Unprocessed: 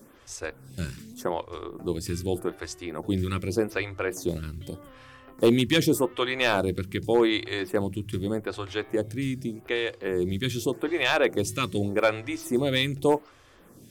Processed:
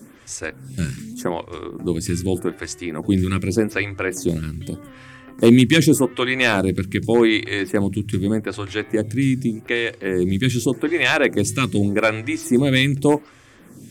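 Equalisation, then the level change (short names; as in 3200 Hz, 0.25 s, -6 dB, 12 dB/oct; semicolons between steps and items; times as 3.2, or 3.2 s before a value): graphic EQ 125/250/2000/8000 Hz +8/+9/+8/+9 dB; +1.0 dB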